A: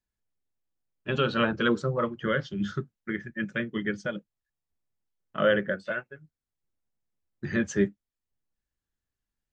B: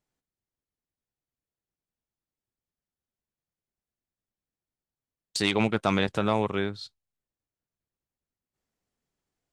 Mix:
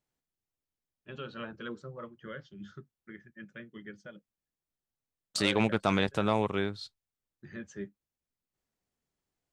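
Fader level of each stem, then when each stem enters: −16.0, −2.5 decibels; 0.00, 0.00 seconds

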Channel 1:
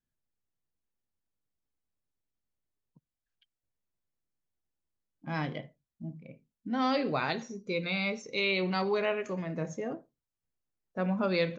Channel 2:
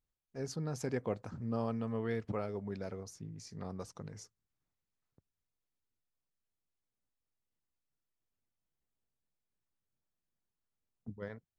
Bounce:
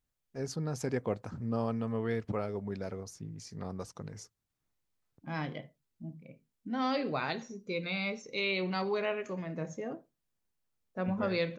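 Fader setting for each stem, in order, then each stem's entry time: −3.0, +3.0 decibels; 0.00, 0.00 seconds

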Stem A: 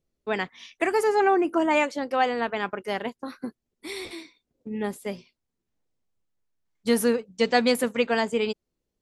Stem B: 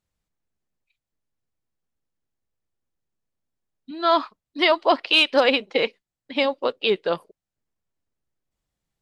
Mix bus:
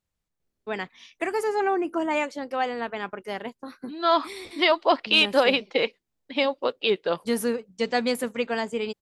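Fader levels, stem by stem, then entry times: −3.5, −2.0 decibels; 0.40, 0.00 seconds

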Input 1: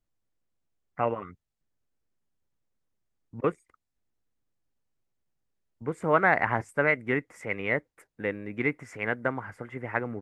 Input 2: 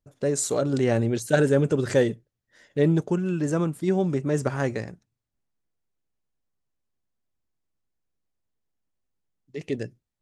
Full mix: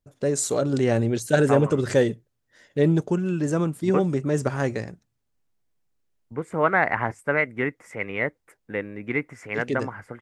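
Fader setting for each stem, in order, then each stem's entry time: +1.5, +1.0 decibels; 0.50, 0.00 seconds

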